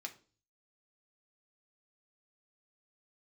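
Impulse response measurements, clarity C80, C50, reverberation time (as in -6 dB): 20.5 dB, 15.0 dB, 0.40 s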